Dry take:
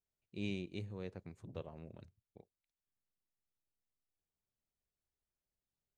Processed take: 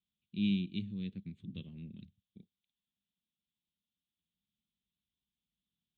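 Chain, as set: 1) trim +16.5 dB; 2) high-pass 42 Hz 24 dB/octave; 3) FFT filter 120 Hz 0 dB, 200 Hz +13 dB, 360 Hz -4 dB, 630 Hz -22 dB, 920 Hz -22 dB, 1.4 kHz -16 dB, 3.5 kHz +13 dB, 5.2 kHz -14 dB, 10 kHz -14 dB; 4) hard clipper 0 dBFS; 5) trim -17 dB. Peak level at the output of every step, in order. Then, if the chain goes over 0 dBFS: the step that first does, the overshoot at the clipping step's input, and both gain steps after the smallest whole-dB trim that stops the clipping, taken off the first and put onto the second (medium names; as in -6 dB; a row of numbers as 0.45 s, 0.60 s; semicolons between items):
-10.5 dBFS, -11.5 dBFS, -5.5 dBFS, -5.5 dBFS, -22.5 dBFS; nothing clips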